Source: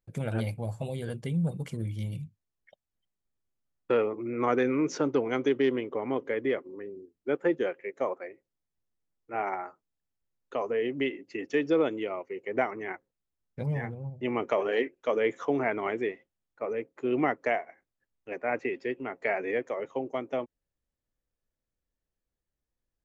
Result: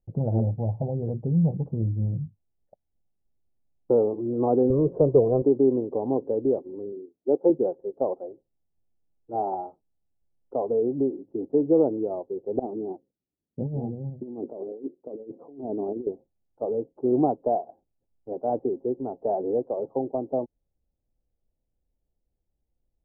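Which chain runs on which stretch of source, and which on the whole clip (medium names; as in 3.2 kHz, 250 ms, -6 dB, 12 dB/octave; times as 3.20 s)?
4.70–5.42 s: zero-crossing glitches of -30.5 dBFS + tilt EQ -2 dB/octave + comb 1.8 ms, depth 68%
6.92–7.50 s: high-pass 400 Hz + tilt EQ -3.5 dB/octave
12.59–16.07 s: band-pass filter 280 Hz, Q 1.4 + compressor with a negative ratio -37 dBFS, ratio -0.5
whole clip: elliptic low-pass 820 Hz, stop band 60 dB; bass shelf 110 Hz +7 dB; trim +5 dB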